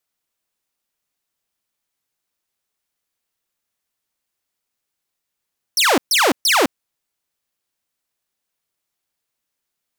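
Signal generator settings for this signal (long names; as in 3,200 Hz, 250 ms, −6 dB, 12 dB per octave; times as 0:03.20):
repeated falling chirps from 6,100 Hz, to 230 Hz, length 0.21 s saw, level −9.5 dB, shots 3, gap 0.13 s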